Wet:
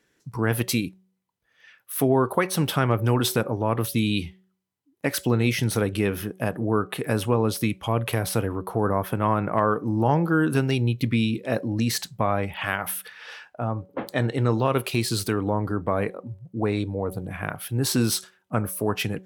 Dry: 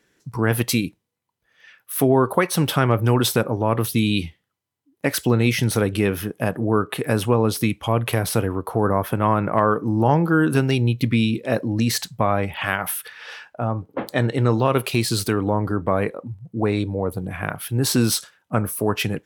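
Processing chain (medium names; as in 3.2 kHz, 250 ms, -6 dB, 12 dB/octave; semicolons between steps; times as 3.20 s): de-hum 187.7 Hz, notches 4; trim -3.5 dB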